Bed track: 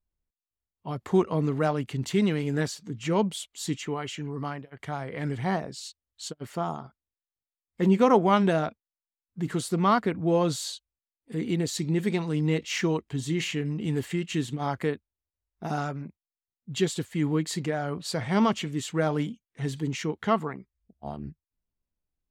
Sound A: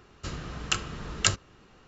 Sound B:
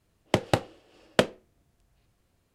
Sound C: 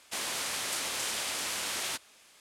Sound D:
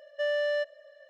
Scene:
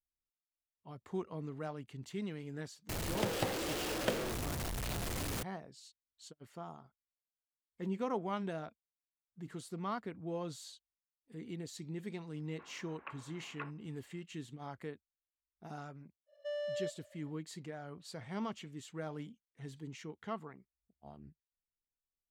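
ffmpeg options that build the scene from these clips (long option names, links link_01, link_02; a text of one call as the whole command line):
ffmpeg -i bed.wav -i cue0.wav -i cue1.wav -i cue2.wav -i cue3.wav -filter_complex "[0:a]volume=-16.5dB[link_01];[2:a]aeval=exprs='val(0)+0.5*0.141*sgn(val(0))':channel_layout=same[link_02];[1:a]highpass=frequency=540:width_type=q:width=0.5412,highpass=frequency=540:width_type=q:width=1.307,lowpass=frequency=2400:width_type=q:width=0.5176,lowpass=frequency=2400:width_type=q:width=0.7071,lowpass=frequency=2400:width_type=q:width=1.932,afreqshift=-200[link_03];[4:a]equalizer=frequency=1700:width_type=o:width=1.1:gain=-9.5[link_04];[link_02]atrim=end=2.54,asetpts=PTS-STARTPTS,volume=-15dB,afade=type=in:duration=0.004:curve=hsin,afade=type=out:start_time=2.536:duration=0.004:curve=hsin,adelay=2890[link_05];[link_03]atrim=end=1.87,asetpts=PTS-STARTPTS,volume=-14dB,afade=type=in:duration=0.004:curve=hsin,afade=type=out:start_time=1.866:duration=0.004:curve=hsin,adelay=12350[link_06];[link_04]atrim=end=1.09,asetpts=PTS-STARTPTS,volume=-9dB,afade=type=in:duration=0.1,afade=type=out:start_time=0.99:duration=0.1,adelay=16260[link_07];[link_01][link_05][link_06][link_07]amix=inputs=4:normalize=0" out.wav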